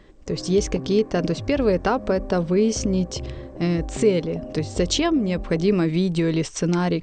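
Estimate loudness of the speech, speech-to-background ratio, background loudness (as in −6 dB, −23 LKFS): −22.5 LKFS, 13.5 dB, −36.0 LKFS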